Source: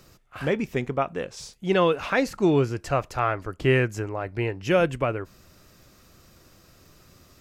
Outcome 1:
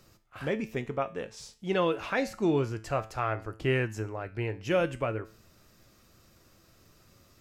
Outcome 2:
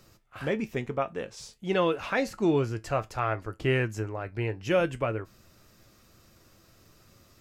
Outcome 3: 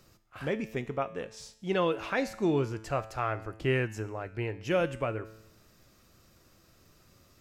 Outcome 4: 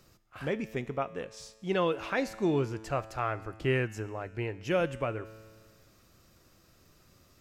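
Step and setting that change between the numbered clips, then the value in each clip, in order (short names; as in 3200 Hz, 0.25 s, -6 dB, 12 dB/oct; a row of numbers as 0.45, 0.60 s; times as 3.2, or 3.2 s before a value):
resonator, decay: 0.39, 0.16, 0.81, 1.7 s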